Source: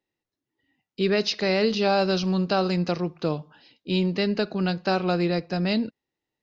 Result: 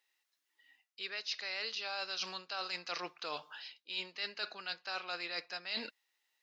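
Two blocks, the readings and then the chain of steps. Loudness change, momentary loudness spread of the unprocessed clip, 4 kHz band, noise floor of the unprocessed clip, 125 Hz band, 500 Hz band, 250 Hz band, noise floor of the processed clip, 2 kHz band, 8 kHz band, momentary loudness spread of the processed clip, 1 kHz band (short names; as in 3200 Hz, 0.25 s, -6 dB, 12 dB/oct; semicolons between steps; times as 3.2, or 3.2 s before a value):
-15.0 dB, 6 LU, -7.0 dB, under -85 dBFS, -37.5 dB, -23.5 dB, -31.0 dB, -85 dBFS, -8.5 dB, n/a, 6 LU, -14.5 dB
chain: HPF 1400 Hz 12 dB/oct; reverse; compressor 10:1, threshold -46 dBFS, peak gain reduction 23.5 dB; reverse; gain +9 dB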